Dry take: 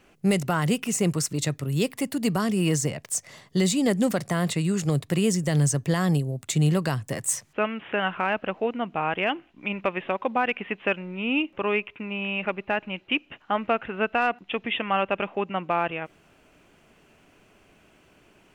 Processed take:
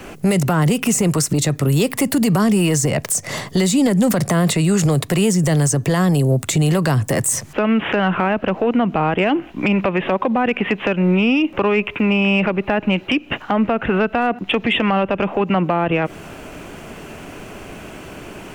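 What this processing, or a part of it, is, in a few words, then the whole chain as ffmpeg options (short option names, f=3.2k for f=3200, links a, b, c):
mastering chain: -filter_complex "[0:a]equalizer=f=3.3k:t=o:w=2.2:g=-4,acrossover=split=200|500[a][b][c];[a]acompressor=threshold=-35dB:ratio=4[d];[b]acompressor=threshold=-34dB:ratio=4[e];[c]acompressor=threshold=-34dB:ratio=4[f];[d][e][f]amix=inputs=3:normalize=0,acompressor=threshold=-39dB:ratio=1.5,asoftclip=type=tanh:threshold=-25dB,alimiter=level_in=32.5dB:limit=-1dB:release=50:level=0:latency=1,volume=-8.5dB"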